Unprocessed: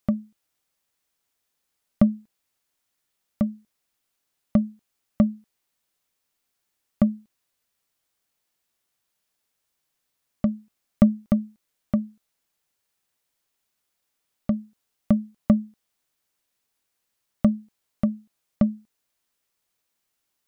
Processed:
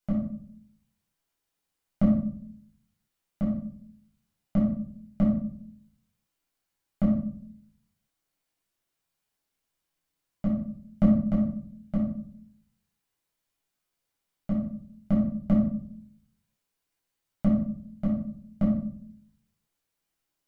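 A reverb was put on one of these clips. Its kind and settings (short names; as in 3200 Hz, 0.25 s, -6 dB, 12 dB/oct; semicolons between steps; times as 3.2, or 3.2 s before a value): shoebox room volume 730 m³, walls furnished, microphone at 7.6 m; gain -13 dB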